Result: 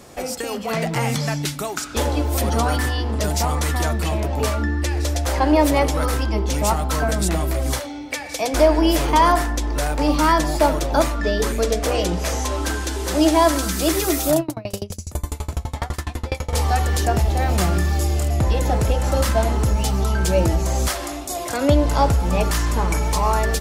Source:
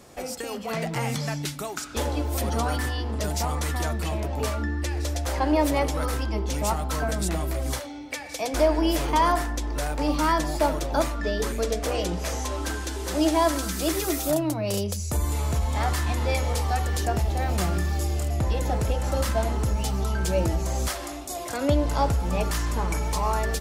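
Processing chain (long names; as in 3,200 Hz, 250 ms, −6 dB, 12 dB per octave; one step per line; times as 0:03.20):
0:14.40–0:16.53: tremolo with a ramp in dB decaying 12 Hz, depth 29 dB
level +6 dB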